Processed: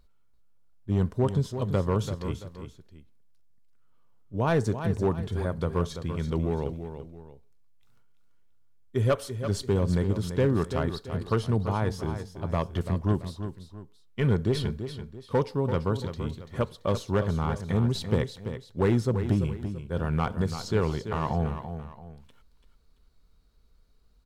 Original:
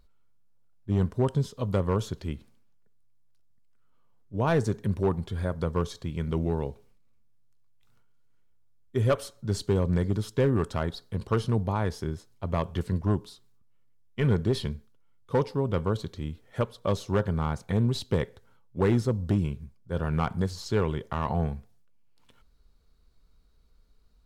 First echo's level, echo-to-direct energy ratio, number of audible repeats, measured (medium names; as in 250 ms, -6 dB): -9.5 dB, -9.0 dB, 2